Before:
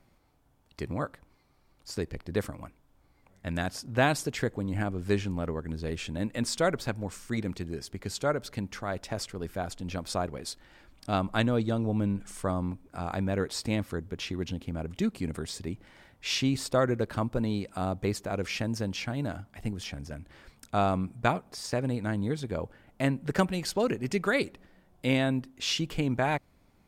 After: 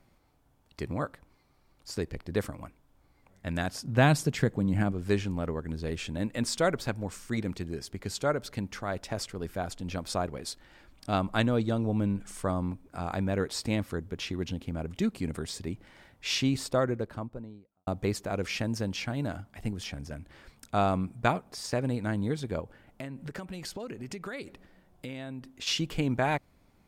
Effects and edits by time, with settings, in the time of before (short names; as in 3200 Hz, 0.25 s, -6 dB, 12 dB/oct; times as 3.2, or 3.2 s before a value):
3.83–4.92 bell 160 Hz +9.5 dB 0.91 oct
16.45–17.87 studio fade out
22.6–25.67 compressor 8:1, threshold -35 dBFS